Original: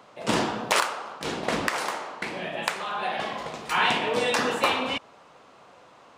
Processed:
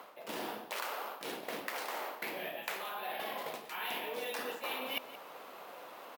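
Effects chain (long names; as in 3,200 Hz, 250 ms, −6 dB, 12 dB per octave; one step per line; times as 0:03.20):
high-shelf EQ 6,900 Hz −8.5 dB
bad sample-rate conversion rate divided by 3×, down none, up hold
reversed playback
downward compressor 12 to 1, threshold −39 dBFS, peak gain reduction 22 dB
reversed playback
Bessel high-pass filter 410 Hz, order 2
on a send: single-tap delay 175 ms −16.5 dB
on the sum: dynamic equaliser 1,200 Hz, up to −5 dB, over −56 dBFS, Q 1.2
level +5.5 dB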